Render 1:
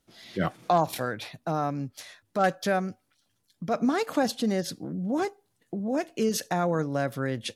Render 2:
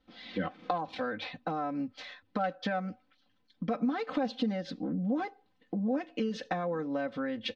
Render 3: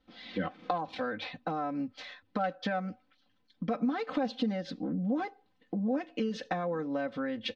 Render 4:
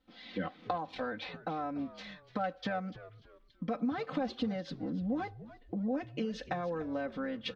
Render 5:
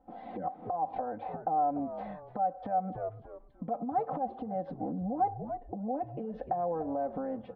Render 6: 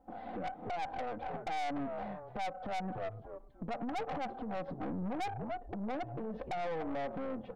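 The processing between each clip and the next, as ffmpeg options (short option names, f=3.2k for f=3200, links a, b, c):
-af "lowpass=f=3.9k:w=0.5412,lowpass=f=3.9k:w=1.3066,acompressor=threshold=-31dB:ratio=12,aecho=1:1:3.9:0.91"
-af anull
-filter_complex "[0:a]asplit=4[a][b][c][d];[b]adelay=293,afreqshift=-80,volume=-16dB[e];[c]adelay=586,afreqshift=-160,volume=-24.9dB[f];[d]adelay=879,afreqshift=-240,volume=-33.7dB[g];[a][e][f][g]amix=inputs=4:normalize=0,volume=-3dB"
-af "acompressor=threshold=-38dB:ratio=5,alimiter=level_in=13dB:limit=-24dB:level=0:latency=1:release=350,volume=-13dB,lowpass=f=770:t=q:w=5.7,volume=7.5dB"
-af "aeval=exprs='(tanh(70.8*val(0)+0.5)-tanh(0.5))/70.8':c=same,volume=2.5dB"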